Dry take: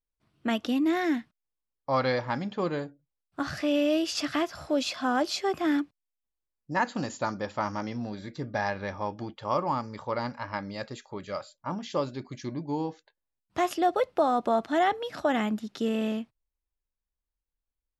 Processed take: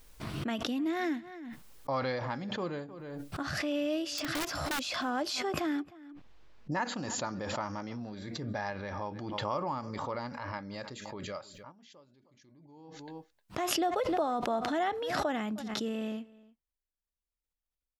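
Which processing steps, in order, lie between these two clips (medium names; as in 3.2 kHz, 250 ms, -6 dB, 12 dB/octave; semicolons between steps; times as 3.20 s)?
4.02–4.84 s: integer overflow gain 20.5 dB; 5.82–6.72 s: distance through air 210 m; echo from a far wall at 53 m, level -22 dB; 11.55–13.66 s: dip -23.5 dB, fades 0.18 s; swell ahead of each attack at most 26 dB/s; trim -7 dB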